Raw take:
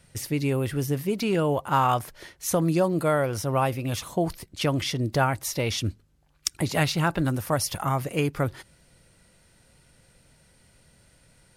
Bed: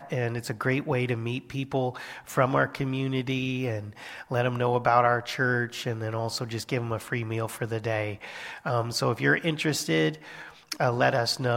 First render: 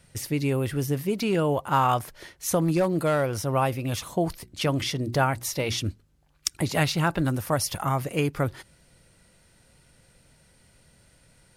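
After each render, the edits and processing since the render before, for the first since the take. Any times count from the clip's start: 2.62–3.41 s: hard clipper -17 dBFS; 4.32–5.88 s: hum notches 60/120/180/240/300/360 Hz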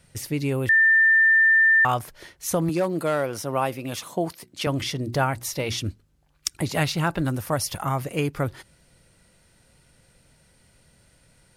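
0.69–1.85 s: bleep 1.79 kHz -13.5 dBFS; 2.69–4.67 s: high-pass 180 Hz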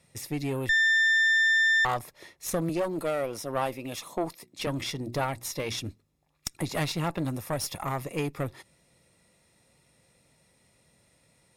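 comb of notches 1.5 kHz; valve stage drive 19 dB, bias 0.65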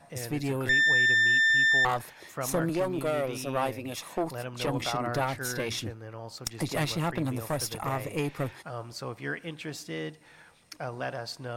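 add bed -11.5 dB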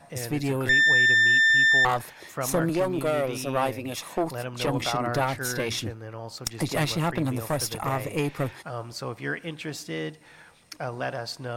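trim +3.5 dB

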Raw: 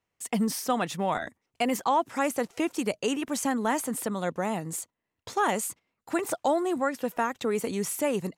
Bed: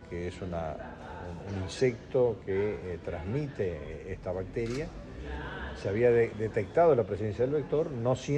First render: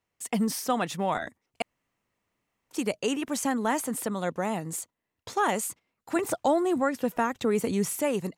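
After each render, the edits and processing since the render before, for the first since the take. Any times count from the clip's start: 1.62–2.71 s: room tone; 6.16–7.99 s: bass shelf 210 Hz +9 dB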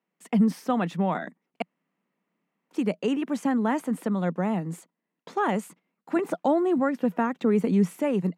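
elliptic high-pass 170 Hz; tone controls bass +11 dB, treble -14 dB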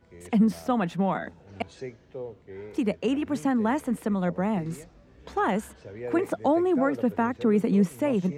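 add bed -11 dB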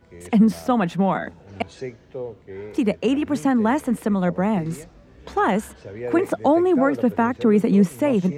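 trim +5.5 dB

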